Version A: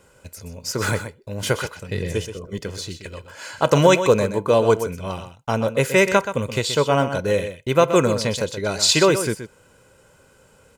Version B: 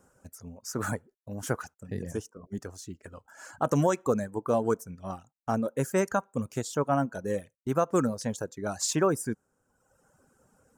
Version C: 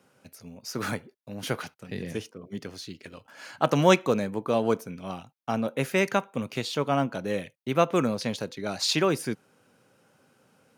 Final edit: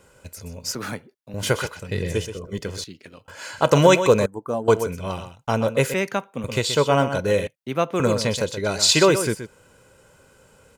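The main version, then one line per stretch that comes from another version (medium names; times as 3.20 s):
A
0.75–1.34 s: from C
2.84–3.28 s: from C
4.26–4.68 s: from B
5.94–6.44 s: from C
7.47–8.00 s: from C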